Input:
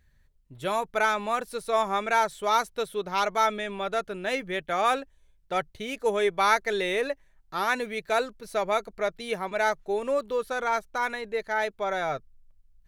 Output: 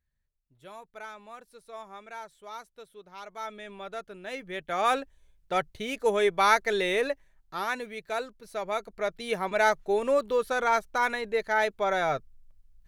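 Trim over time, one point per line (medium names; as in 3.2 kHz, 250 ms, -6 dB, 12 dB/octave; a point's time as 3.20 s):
3.21 s -18 dB
3.68 s -9.5 dB
4.26 s -9.5 dB
4.98 s +0.5 dB
7.08 s +0.5 dB
7.89 s -6.5 dB
8.56 s -6.5 dB
9.49 s +2 dB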